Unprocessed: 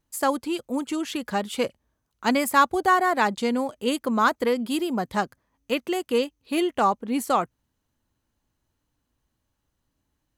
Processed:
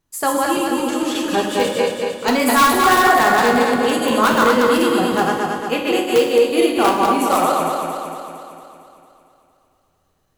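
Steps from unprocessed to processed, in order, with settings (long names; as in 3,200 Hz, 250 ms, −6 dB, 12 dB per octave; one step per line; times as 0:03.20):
feedback delay that plays each chunk backwards 114 ms, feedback 76%, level −1 dB
0:05.17–0:05.73: notch filter 4,000 Hz, Q 7
in parallel at −5.5 dB: wrap-around overflow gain 10 dB
on the sum: mains-hum notches 50/100/150/200 Hz
on a send at −2 dB: convolution reverb, pre-delay 3 ms
on the sum: level −1 dB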